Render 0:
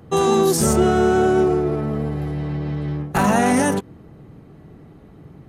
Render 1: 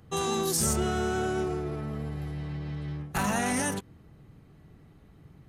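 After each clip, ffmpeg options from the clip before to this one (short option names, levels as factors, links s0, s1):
-af "equalizer=f=410:w=0.33:g=-10,volume=0.631"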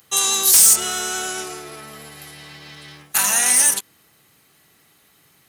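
-af "aderivative,aeval=exprs='0.178*sin(PI/2*2.82*val(0)/0.178)':c=same,volume=2.51"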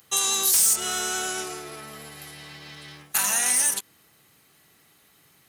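-af "acompressor=threshold=0.112:ratio=2,volume=0.75"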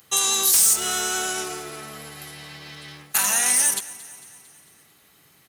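-af "aecho=1:1:225|450|675|900|1125:0.112|0.064|0.0365|0.0208|0.0118,volume=1.33"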